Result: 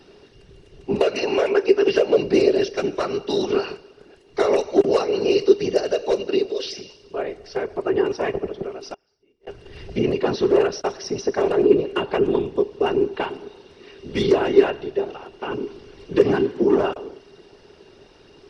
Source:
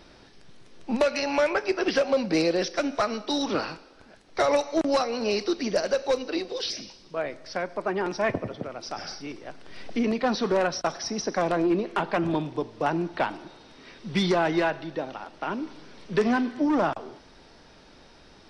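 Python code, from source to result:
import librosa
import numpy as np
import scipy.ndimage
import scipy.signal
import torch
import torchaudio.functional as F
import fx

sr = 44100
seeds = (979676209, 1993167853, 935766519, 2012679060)

y = fx.whisperise(x, sr, seeds[0])
y = fx.gate_flip(y, sr, shuts_db=-33.0, range_db=-33, at=(8.94, 9.47))
y = fx.small_body(y, sr, hz=(400.0, 2800.0), ring_ms=55, db=17)
y = F.gain(torch.from_numpy(y), -1.5).numpy()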